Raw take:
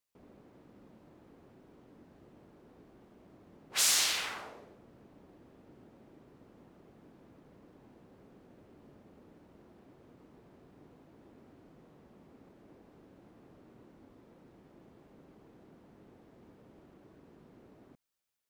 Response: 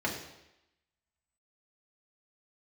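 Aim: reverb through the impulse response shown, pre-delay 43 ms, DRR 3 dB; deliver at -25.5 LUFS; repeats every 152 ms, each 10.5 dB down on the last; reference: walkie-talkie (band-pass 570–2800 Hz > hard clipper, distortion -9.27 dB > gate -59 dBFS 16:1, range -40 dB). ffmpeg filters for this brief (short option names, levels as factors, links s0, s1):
-filter_complex "[0:a]aecho=1:1:152|304|456:0.299|0.0896|0.0269,asplit=2[s0][s1];[1:a]atrim=start_sample=2205,adelay=43[s2];[s1][s2]afir=irnorm=-1:irlink=0,volume=0.282[s3];[s0][s3]amix=inputs=2:normalize=0,highpass=570,lowpass=2800,asoftclip=type=hard:threshold=0.0178,agate=range=0.01:threshold=0.00112:ratio=16,volume=4.47"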